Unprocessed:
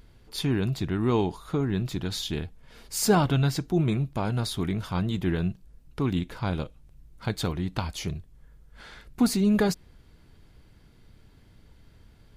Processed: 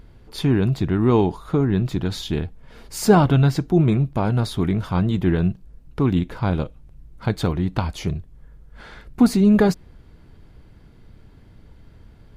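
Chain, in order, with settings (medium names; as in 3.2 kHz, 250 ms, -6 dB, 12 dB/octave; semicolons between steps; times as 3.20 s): treble shelf 2.3 kHz -9.5 dB; trim +7.5 dB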